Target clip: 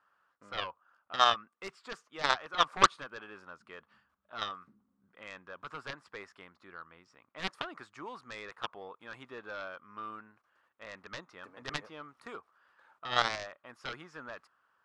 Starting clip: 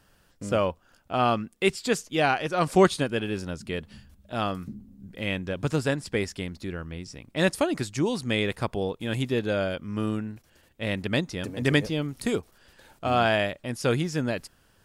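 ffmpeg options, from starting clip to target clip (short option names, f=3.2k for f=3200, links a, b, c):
-af "bandpass=f=1.2k:t=q:w=4.2:csg=0,aeval=exprs='0.188*(cos(1*acos(clip(val(0)/0.188,-1,1)))-cos(1*PI/2))+0.0075*(cos(5*acos(clip(val(0)/0.188,-1,1)))-cos(5*PI/2))+0.0473*(cos(7*acos(clip(val(0)/0.188,-1,1)))-cos(7*PI/2))':c=same,volume=6.5dB"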